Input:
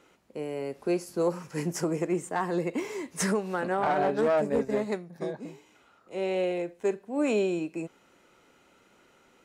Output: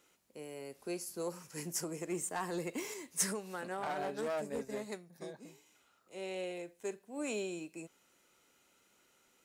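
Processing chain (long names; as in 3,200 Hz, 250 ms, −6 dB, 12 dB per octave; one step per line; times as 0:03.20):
first-order pre-emphasis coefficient 0.8
0:02.07–0:02.94: leveller curve on the samples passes 1
level +1 dB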